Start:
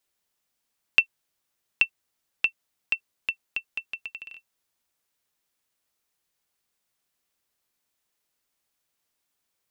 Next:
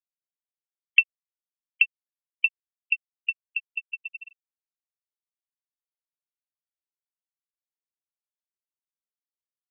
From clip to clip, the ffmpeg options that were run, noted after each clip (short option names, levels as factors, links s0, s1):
-af "afftfilt=real='re*gte(hypot(re,im),0.0891)':imag='im*gte(hypot(re,im),0.0891)':win_size=1024:overlap=0.75,volume=1.33"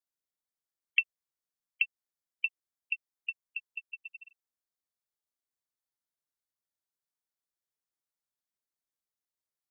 -af "equalizer=f=2700:t=o:w=0.4:g=-10,volume=1.12"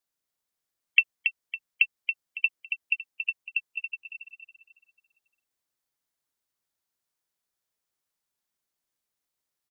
-af "aecho=1:1:278|556|834|1112:0.447|0.156|0.0547|0.0192,volume=2.11"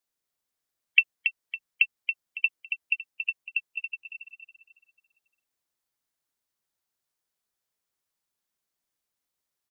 -ar 44100 -c:a aac -b:a 192k